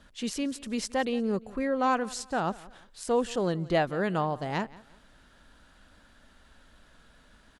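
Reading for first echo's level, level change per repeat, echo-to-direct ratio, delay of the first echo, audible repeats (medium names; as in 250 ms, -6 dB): -21.0 dB, -10.0 dB, -20.5 dB, 175 ms, 2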